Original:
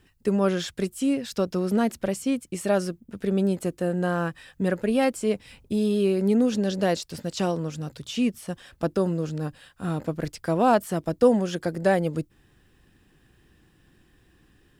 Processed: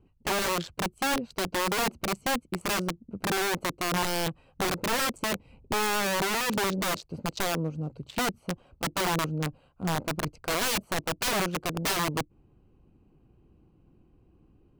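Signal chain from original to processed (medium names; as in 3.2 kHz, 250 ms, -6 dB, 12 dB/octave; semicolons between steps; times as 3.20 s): local Wiener filter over 25 samples; vibrato 1.2 Hz 8.2 cents; integer overflow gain 22 dB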